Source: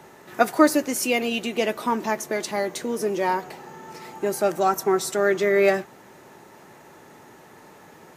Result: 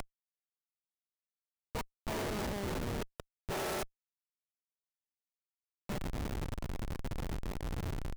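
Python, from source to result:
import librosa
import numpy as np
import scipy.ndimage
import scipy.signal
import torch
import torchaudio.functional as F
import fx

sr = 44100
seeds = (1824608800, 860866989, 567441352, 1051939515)

y = fx.spec_swells(x, sr, rise_s=2.86)
y = 10.0 ** (-12.0 / 20.0) * np.tanh(y / 10.0 ** (-12.0 / 20.0))
y = fx.transient(y, sr, attack_db=-4, sustain_db=-8)
y = fx.level_steps(y, sr, step_db=21, at=(1.55, 3.2))
y = fx.high_shelf(y, sr, hz=2100.0, db=4.0)
y = fx.echo_thinned(y, sr, ms=135, feedback_pct=69, hz=1100.0, wet_db=-15.5)
y = fx.gate_flip(y, sr, shuts_db=-18.0, range_db=-29)
y = fx.schmitt(y, sr, flips_db=-36.0)
y = y * 10.0 ** (5.0 / 20.0)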